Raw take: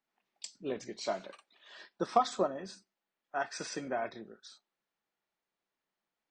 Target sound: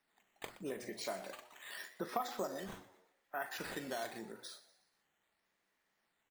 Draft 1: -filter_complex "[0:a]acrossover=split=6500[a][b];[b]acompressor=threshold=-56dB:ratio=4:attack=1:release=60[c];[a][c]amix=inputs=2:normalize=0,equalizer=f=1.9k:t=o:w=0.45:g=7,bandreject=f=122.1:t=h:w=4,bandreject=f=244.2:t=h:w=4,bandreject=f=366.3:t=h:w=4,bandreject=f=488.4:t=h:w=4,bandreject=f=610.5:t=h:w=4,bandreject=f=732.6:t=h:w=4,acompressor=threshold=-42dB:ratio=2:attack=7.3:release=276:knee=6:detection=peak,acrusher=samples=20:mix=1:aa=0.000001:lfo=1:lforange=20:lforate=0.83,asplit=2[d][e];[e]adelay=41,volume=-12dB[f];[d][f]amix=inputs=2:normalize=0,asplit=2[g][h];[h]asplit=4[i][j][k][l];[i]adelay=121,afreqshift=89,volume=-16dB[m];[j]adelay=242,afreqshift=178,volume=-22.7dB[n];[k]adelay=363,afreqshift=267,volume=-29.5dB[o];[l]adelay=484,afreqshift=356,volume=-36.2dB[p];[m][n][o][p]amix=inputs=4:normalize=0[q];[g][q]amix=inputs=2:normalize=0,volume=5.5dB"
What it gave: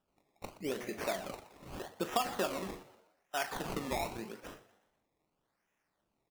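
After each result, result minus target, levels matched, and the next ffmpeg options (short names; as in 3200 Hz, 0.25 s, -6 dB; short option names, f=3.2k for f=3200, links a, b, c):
decimation with a swept rate: distortion +8 dB; compressor: peak gain reduction -5 dB
-filter_complex "[0:a]acrossover=split=6500[a][b];[b]acompressor=threshold=-56dB:ratio=4:attack=1:release=60[c];[a][c]amix=inputs=2:normalize=0,equalizer=f=1.9k:t=o:w=0.45:g=7,bandreject=f=122.1:t=h:w=4,bandreject=f=244.2:t=h:w=4,bandreject=f=366.3:t=h:w=4,bandreject=f=488.4:t=h:w=4,bandreject=f=610.5:t=h:w=4,bandreject=f=732.6:t=h:w=4,acompressor=threshold=-42dB:ratio=2:attack=7.3:release=276:knee=6:detection=peak,acrusher=samples=6:mix=1:aa=0.000001:lfo=1:lforange=6:lforate=0.83,asplit=2[d][e];[e]adelay=41,volume=-12dB[f];[d][f]amix=inputs=2:normalize=0,asplit=2[g][h];[h]asplit=4[i][j][k][l];[i]adelay=121,afreqshift=89,volume=-16dB[m];[j]adelay=242,afreqshift=178,volume=-22.7dB[n];[k]adelay=363,afreqshift=267,volume=-29.5dB[o];[l]adelay=484,afreqshift=356,volume=-36.2dB[p];[m][n][o][p]amix=inputs=4:normalize=0[q];[g][q]amix=inputs=2:normalize=0,volume=5.5dB"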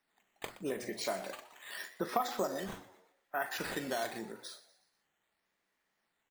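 compressor: peak gain reduction -5 dB
-filter_complex "[0:a]acrossover=split=6500[a][b];[b]acompressor=threshold=-56dB:ratio=4:attack=1:release=60[c];[a][c]amix=inputs=2:normalize=0,equalizer=f=1.9k:t=o:w=0.45:g=7,bandreject=f=122.1:t=h:w=4,bandreject=f=244.2:t=h:w=4,bandreject=f=366.3:t=h:w=4,bandreject=f=488.4:t=h:w=4,bandreject=f=610.5:t=h:w=4,bandreject=f=732.6:t=h:w=4,acompressor=threshold=-52.5dB:ratio=2:attack=7.3:release=276:knee=6:detection=peak,acrusher=samples=6:mix=1:aa=0.000001:lfo=1:lforange=6:lforate=0.83,asplit=2[d][e];[e]adelay=41,volume=-12dB[f];[d][f]amix=inputs=2:normalize=0,asplit=2[g][h];[h]asplit=4[i][j][k][l];[i]adelay=121,afreqshift=89,volume=-16dB[m];[j]adelay=242,afreqshift=178,volume=-22.7dB[n];[k]adelay=363,afreqshift=267,volume=-29.5dB[o];[l]adelay=484,afreqshift=356,volume=-36.2dB[p];[m][n][o][p]amix=inputs=4:normalize=0[q];[g][q]amix=inputs=2:normalize=0,volume=5.5dB"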